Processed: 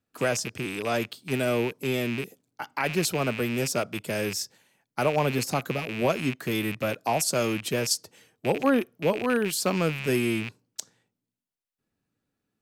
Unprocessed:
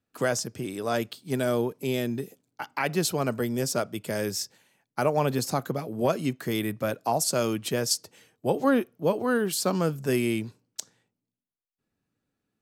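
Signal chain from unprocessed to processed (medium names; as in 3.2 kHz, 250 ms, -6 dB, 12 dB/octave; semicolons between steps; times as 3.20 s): rattle on loud lows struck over -40 dBFS, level -23 dBFS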